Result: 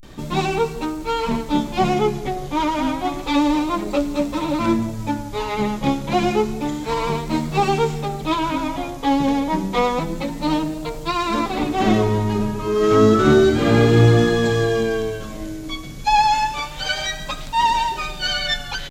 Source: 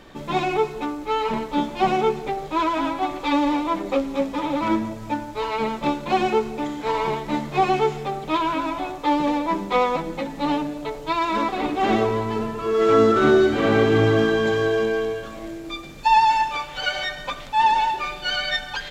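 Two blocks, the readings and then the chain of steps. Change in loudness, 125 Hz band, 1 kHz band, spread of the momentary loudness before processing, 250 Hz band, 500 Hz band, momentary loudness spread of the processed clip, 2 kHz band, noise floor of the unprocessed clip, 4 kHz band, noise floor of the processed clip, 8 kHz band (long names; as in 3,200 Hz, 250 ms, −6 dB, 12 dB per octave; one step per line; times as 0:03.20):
+2.0 dB, +9.0 dB, 0.0 dB, 11 LU, +4.0 dB, +1.0 dB, 11 LU, +0.5 dB, −36 dBFS, +3.5 dB, −32 dBFS, +8.5 dB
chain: pitch vibrato 0.3 Hz 93 cents
bass and treble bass +10 dB, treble +9 dB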